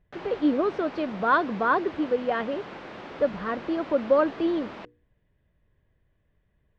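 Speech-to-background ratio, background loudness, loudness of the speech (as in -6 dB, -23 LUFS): 15.0 dB, -41.0 LUFS, -26.0 LUFS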